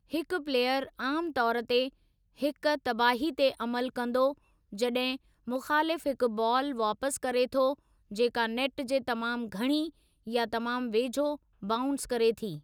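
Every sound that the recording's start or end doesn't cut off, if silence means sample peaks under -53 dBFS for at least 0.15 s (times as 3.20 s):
2.37–4.38 s
4.72–5.17 s
5.47–7.79 s
8.11–9.90 s
10.26–11.37 s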